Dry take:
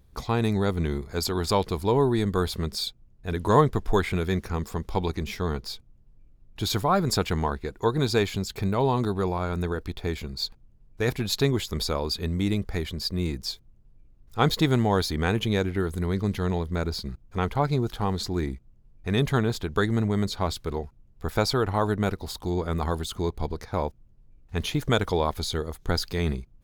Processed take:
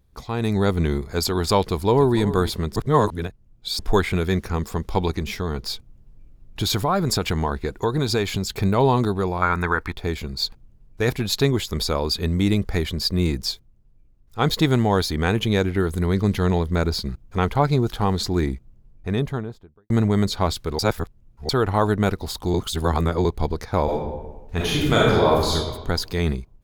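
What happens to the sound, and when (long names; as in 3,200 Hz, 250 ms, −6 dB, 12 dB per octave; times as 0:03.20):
0:01.65–0:02.20: delay throw 290 ms, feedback 10%, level −13 dB
0:02.76–0:03.79: reverse
0:05.19–0:08.51: downward compressor 2.5 to 1, threshold −26 dBFS
0:09.42–0:09.93: flat-topped bell 1,400 Hz +13.5 dB
0:13.44–0:14.53: duck −8 dB, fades 0.24 s
0:18.42–0:19.90: fade out and dull
0:20.79–0:21.49: reverse
0:22.54–0:23.25: reverse
0:23.84–0:25.54: thrown reverb, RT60 1.2 s, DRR −6 dB
whole clip: automatic gain control gain up to 11.5 dB; level −4 dB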